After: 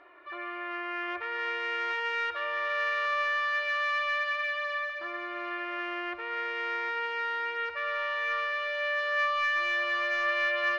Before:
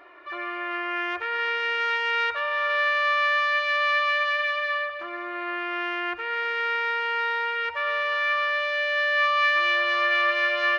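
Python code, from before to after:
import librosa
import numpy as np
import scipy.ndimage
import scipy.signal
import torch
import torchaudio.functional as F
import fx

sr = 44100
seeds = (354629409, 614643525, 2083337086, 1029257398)

y = 10.0 ** (-12.5 / 20.0) * np.tanh(x / 10.0 ** (-12.5 / 20.0))
y = fx.air_absorb(y, sr, metres=100.0)
y = fx.echo_feedback(y, sr, ms=752, feedback_pct=30, wet_db=-10.0)
y = y * librosa.db_to_amplitude(-5.0)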